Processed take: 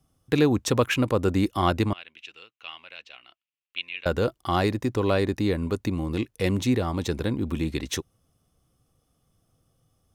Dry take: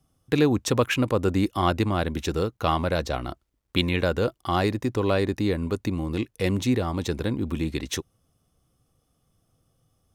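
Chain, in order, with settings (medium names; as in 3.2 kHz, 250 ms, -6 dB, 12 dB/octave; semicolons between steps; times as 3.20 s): 1.93–4.06 s: band-pass filter 2.7 kHz, Q 5.4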